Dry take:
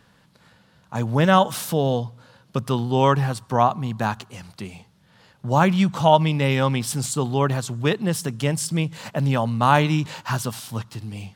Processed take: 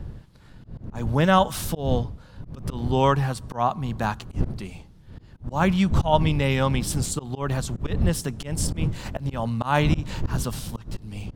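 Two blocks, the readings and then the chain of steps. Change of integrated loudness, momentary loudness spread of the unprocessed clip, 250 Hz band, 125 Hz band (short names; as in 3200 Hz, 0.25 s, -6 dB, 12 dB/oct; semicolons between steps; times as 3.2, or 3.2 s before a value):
-3.0 dB, 16 LU, -2.5 dB, -2.0 dB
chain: wind noise 120 Hz -24 dBFS; auto swell 0.161 s; gain -2 dB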